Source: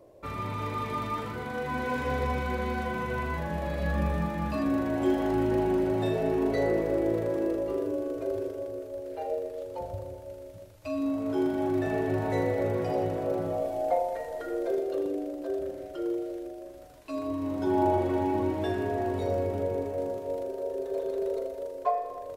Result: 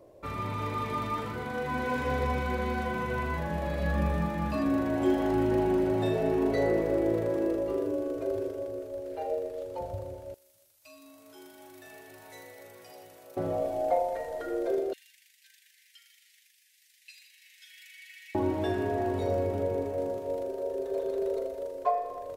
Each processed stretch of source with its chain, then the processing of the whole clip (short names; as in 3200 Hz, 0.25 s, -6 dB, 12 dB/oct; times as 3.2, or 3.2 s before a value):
10.34–13.37 pre-emphasis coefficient 0.97 + notch 7200 Hz, Q 29
14.93–18.35 steep high-pass 1800 Hz 72 dB/oct + comb 5.8 ms, depth 53% + Doppler distortion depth 0.21 ms
whole clip: dry